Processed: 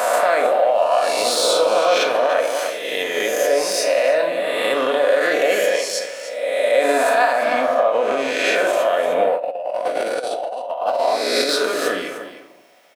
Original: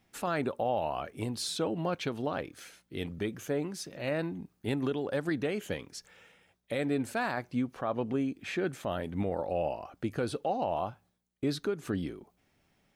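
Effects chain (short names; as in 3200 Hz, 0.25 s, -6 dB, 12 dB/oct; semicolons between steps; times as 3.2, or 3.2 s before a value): spectral swells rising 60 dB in 1.30 s; de-esser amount 70%; resonant high-pass 610 Hz, resonance Q 4.7; notch 790 Hz, Q 12; doubler 38 ms -12.5 dB; echo 0.3 s -12.5 dB; limiter -21 dBFS, peak gain reduction 11.5 dB; high shelf 5300 Hz +5.5 dB; shoebox room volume 1900 m³, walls furnished, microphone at 1.9 m; 9.36–11.49 negative-ratio compressor -31 dBFS, ratio -0.5; bell 2400 Hz +4 dB 2.8 oct; gain +9 dB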